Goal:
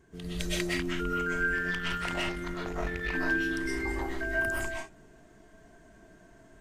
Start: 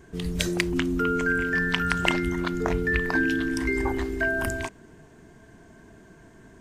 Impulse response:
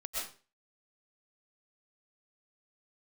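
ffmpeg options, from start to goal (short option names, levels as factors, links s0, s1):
-filter_complex "[1:a]atrim=start_sample=2205,afade=t=out:st=0.26:d=0.01,atrim=end_sample=11907[s0];[0:a][s0]afir=irnorm=-1:irlink=0,asettb=1/sr,asplit=3[s1][s2][s3];[s1]atrim=end=1.714[s4];[s2]atrim=start=1.71:end=3.14,asetpts=PTS-STARTPTS,afade=t=in:d=0.004:c=qsin,afade=t=out:st=1.426:d=0.004:c=qsin,aeval=exprs='(tanh(7.94*val(0)+0.55)-tanh(0.55))/7.94':c=same[s5];[s3]atrim=start=3.136[s6];[s4][s5]acrossfade=d=0.004:c1=hsin:c2=qsin[s7];[s7][s6]acrossfade=d=0.004:c1=qsin:c2=hsin,volume=0.501"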